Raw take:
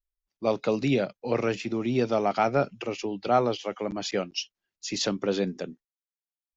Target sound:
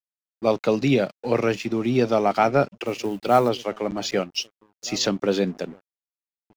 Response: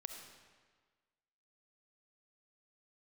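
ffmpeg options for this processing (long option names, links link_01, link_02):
-filter_complex "[0:a]asettb=1/sr,asplit=3[link_01][link_02][link_03];[link_01]atrim=end=2.844[link_04];[link_02]atrim=start=2.84:end=3.49,asetpts=PTS-STARTPTS,afade=type=in:duration=0.004:curve=qsin,afade=type=out:start_time=0.646:duration=0.004:curve=qsin,acrusher=bits=7:mode=log:mix=0:aa=0.000001[link_05];[link_03]atrim=start=3.486[link_06];[link_04][link_05]acrossfade=duration=0.004:curve1=hsin:curve2=qsin[link_07];[link_07][link_06]acrossfade=duration=0.004:curve1=qsin:curve2=hsin,asplit=2[link_08][link_09];[link_09]adelay=1574,volume=-22dB,highshelf=frequency=4000:gain=-35.4[link_10];[link_08][link_10]amix=inputs=2:normalize=0,aeval=exprs='sgn(val(0))*max(abs(val(0))-0.00299,0)':channel_layout=same,volume=5dB"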